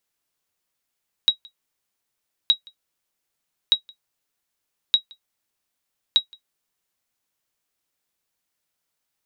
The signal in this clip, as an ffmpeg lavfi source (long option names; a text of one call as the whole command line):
ffmpeg -f lavfi -i "aevalsrc='0.473*(sin(2*PI*3830*mod(t,1.22))*exp(-6.91*mod(t,1.22)/0.1)+0.0398*sin(2*PI*3830*max(mod(t,1.22)-0.17,0))*exp(-6.91*max(mod(t,1.22)-0.17,0)/0.1))':duration=6.1:sample_rate=44100" out.wav